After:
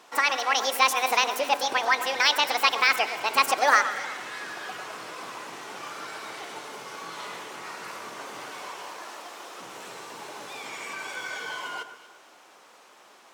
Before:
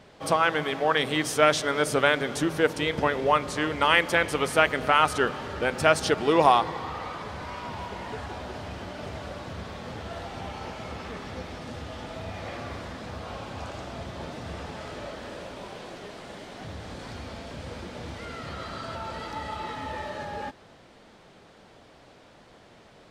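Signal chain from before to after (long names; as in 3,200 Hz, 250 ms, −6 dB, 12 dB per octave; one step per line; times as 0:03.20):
high-pass filter 240 Hz 12 dB per octave
wrong playback speed 45 rpm record played at 78 rpm
delay that swaps between a low-pass and a high-pass 119 ms, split 1,700 Hz, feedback 55%, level −10 dB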